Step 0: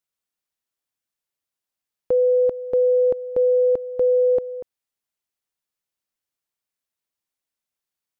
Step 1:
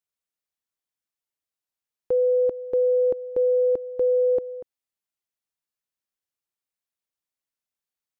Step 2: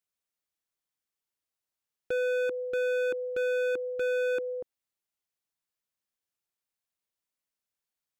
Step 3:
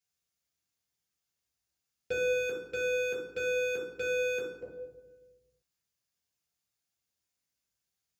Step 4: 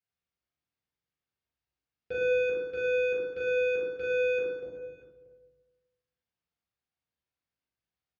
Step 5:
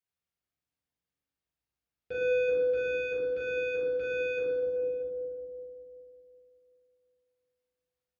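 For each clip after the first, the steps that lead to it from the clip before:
dynamic EQ 350 Hz, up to +6 dB, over -35 dBFS, Q 1.9; gain -5 dB
hard clip -27 dBFS, distortion -8 dB
reverb RT60 1.2 s, pre-delay 3 ms, DRR -3 dB; gain -6 dB
air absorption 260 m; on a send: reverse bouncing-ball echo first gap 40 ms, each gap 1.6×, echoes 5; on the sum: gain -2 dB
analogue delay 0.376 s, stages 2048, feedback 40%, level -4 dB; FDN reverb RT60 1.4 s, high-frequency decay 0.65×, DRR 15.5 dB; gain -2 dB

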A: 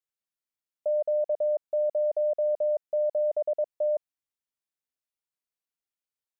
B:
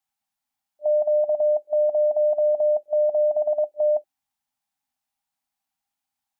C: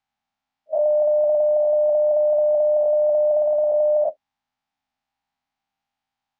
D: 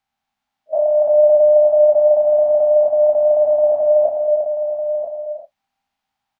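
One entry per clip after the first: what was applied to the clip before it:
FFT band-reject 290–600 Hz; small resonant body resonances 350/800 Hz, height 16 dB; gain +7 dB
spectral dilation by 0.24 s; air absorption 170 m; gain +1 dB
echo 0.986 s -9 dB; non-linear reverb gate 0.4 s flat, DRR 3 dB; gain +3 dB

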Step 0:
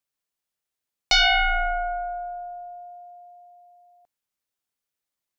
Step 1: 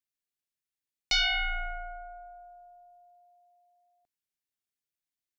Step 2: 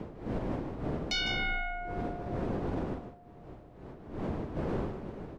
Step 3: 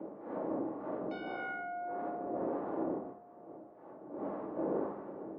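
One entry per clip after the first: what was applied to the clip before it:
band shelf 790 Hz -8 dB; gain -7 dB
wind noise 390 Hz -36 dBFS; limiter -24.5 dBFS, peak gain reduction 7.5 dB; echo 0.153 s -9 dB
Butterworth band-pass 630 Hz, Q 0.71; shoebox room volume 580 m³, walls furnished, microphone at 2.4 m; harmonic tremolo 1.7 Hz, depth 50%, crossover 770 Hz

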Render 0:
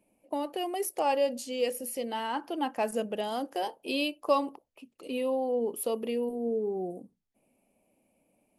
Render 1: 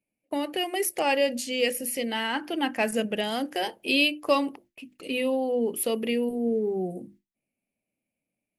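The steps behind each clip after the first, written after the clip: notches 50/100/150/200/250/300/350 Hz; gate with hold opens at -50 dBFS; graphic EQ 125/500/1000/2000 Hz +6/-3/-8/+9 dB; gain +6.5 dB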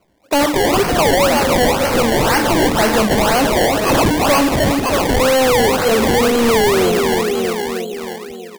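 feedback echo 0.316 s, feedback 56%, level -9 dB; overdrive pedal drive 33 dB, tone 4600 Hz, clips at -10.5 dBFS; decimation with a swept rate 24×, swing 100% 2 Hz; gain +4 dB

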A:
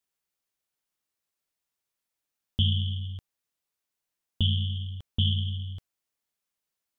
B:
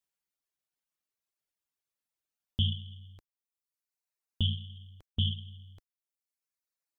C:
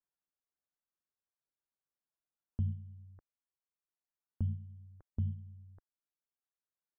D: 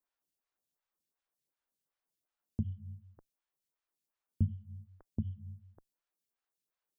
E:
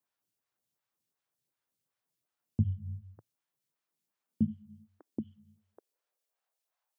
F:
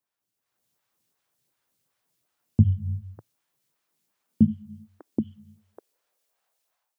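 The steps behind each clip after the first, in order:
reverb removal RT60 1.5 s; gain -3.5 dB
steep low-pass 1700 Hz 48 dB/oct; gain -4 dB
photocell phaser 2.7 Hz; gain +7 dB
high-pass sweep 110 Hz -> 750 Hz, 3.28–6.87; gain +2 dB
AGC gain up to 10.5 dB

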